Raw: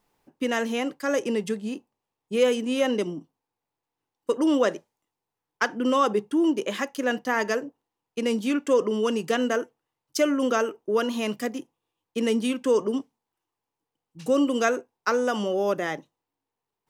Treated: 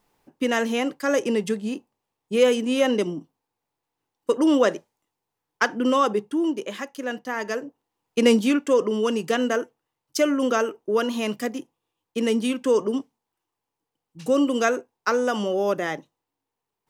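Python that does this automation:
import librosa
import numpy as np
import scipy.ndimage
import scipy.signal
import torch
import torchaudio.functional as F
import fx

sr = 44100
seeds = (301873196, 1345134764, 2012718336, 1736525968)

y = fx.gain(x, sr, db=fx.line((5.77, 3.0), (6.79, -4.0), (7.4, -4.0), (8.28, 9.0), (8.65, 1.5)))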